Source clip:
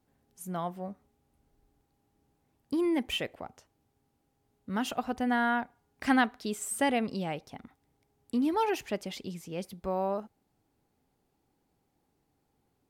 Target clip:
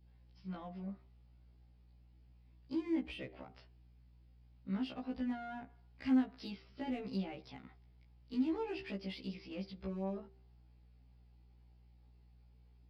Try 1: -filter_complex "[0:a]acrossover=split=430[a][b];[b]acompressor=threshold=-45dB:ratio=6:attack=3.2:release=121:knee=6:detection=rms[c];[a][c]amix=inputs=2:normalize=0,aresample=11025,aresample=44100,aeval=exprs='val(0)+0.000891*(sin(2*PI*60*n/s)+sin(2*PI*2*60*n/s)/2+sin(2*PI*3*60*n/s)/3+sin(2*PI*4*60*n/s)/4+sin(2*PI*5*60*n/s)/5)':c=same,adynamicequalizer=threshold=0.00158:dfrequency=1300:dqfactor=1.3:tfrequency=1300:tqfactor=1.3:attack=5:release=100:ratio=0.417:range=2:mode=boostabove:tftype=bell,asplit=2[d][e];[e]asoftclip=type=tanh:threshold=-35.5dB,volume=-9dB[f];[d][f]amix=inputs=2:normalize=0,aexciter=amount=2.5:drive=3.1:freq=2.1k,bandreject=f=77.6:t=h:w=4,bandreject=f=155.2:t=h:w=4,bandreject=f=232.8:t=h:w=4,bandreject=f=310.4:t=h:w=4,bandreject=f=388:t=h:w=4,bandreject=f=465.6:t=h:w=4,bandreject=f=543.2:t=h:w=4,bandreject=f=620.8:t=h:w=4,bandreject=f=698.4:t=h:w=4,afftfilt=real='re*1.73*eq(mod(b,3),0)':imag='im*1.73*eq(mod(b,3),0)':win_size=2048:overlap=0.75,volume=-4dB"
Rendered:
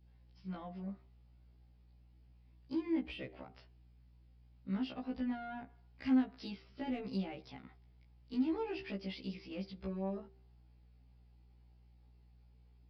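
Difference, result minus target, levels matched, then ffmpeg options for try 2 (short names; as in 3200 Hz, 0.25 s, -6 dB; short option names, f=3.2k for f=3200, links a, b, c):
soft clip: distortion -4 dB
-filter_complex "[0:a]acrossover=split=430[a][b];[b]acompressor=threshold=-45dB:ratio=6:attack=3.2:release=121:knee=6:detection=rms[c];[a][c]amix=inputs=2:normalize=0,aresample=11025,aresample=44100,aeval=exprs='val(0)+0.000891*(sin(2*PI*60*n/s)+sin(2*PI*2*60*n/s)/2+sin(2*PI*3*60*n/s)/3+sin(2*PI*4*60*n/s)/4+sin(2*PI*5*60*n/s)/5)':c=same,adynamicequalizer=threshold=0.00158:dfrequency=1300:dqfactor=1.3:tfrequency=1300:tqfactor=1.3:attack=5:release=100:ratio=0.417:range=2:mode=boostabove:tftype=bell,asplit=2[d][e];[e]asoftclip=type=tanh:threshold=-42.5dB,volume=-9dB[f];[d][f]amix=inputs=2:normalize=0,aexciter=amount=2.5:drive=3.1:freq=2.1k,bandreject=f=77.6:t=h:w=4,bandreject=f=155.2:t=h:w=4,bandreject=f=232.8:t=h:w=4,bandreject=f=310.4:t=h:w=4,bandreject=f=388:t=h:w=4,bandreject=f=465.6:t=h:w=4,bandreject=f=543.2:t=h:w=4,bandreject=f=620.8:t=h:w=4,bandreject=f=698.4:t=h:w=4,afftfilt=real='re*1.73*eq(mod(b,3),0)':imag='im*1.73*eq(mod(b,3),0)':win_size=2048:overlap=0.75,volume=-4dB"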